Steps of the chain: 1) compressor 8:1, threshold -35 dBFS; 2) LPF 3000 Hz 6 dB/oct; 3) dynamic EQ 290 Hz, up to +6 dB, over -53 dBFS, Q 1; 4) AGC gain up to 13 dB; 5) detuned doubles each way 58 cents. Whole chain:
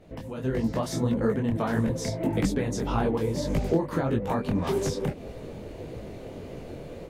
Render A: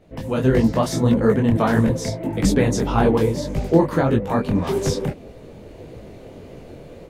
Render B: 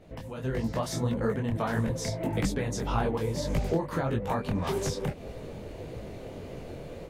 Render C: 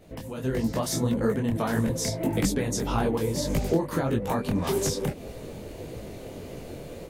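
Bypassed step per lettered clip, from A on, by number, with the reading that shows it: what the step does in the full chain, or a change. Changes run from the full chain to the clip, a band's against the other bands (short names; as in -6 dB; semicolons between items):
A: 1, crest factor change +1.5 dB; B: 3, loudness change -3.0 LU; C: 2, 8 kHz band +7.5 dB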